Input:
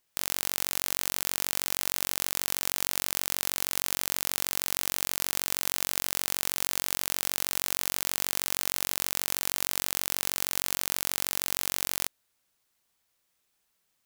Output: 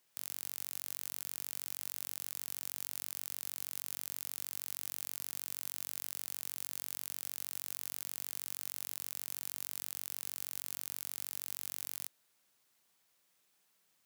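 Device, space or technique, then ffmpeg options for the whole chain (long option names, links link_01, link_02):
saturation between pre-emphasis and de-emphasis: -af "highshelf=frequency=8500:gain=9.5,asoftclip=type=tanh:threshold=-9.5dB,highpass=frequency=110:width=0.5412,highpass=frequency=110:width=1.3066,highshelf=frequency=8500:gain=-9.5,volume=1dB"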